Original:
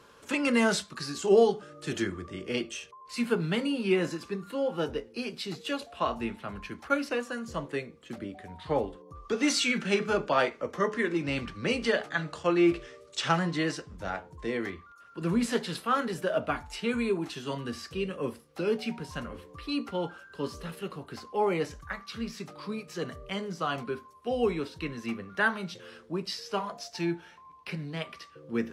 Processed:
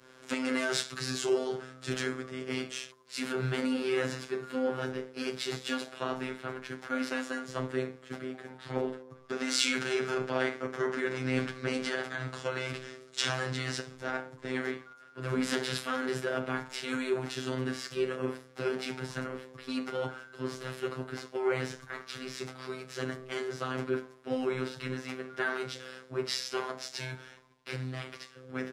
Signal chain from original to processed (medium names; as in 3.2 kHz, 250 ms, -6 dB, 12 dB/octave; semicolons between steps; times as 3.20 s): spectral levelling over time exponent 0.6; comb 7.2 ms, depth 88%; peak limiter -14.5 dBFS, peak gain reduction 8.5 dB; robot voice 129 Hz; three bands expanded up and down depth 100%; trim -6.5 dB